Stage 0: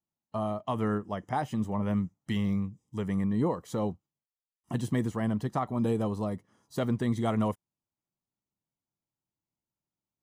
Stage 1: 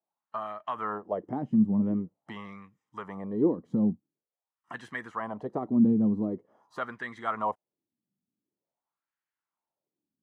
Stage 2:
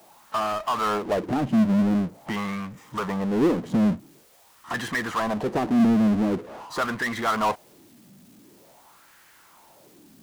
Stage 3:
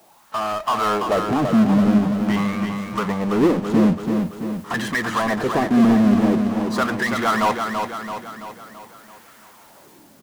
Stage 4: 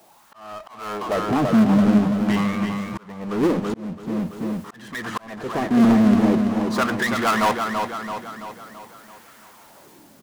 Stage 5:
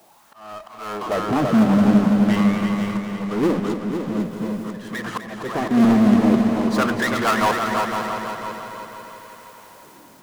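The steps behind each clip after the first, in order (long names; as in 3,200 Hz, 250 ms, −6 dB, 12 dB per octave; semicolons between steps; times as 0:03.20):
in parallel at −1.5 dB: downward compressor, threshold −36 dBFS, peak gain reduction 12.5 dB; on the sum: LFO wah 0.46 Hz 210–1,700 Hz, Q 3.1; level +7.5 dB
power curve on the samples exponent 0.5
automatic gain control gain up to 4 dB; on a send: repeating echo 334 ms, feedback 53%, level −5.5 dB
phase distortion by the signal itself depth 0.15 ms; volume swells 671 ms
echo machine with several playback heads 251 ms, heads first and second, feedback 49%, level −10 dB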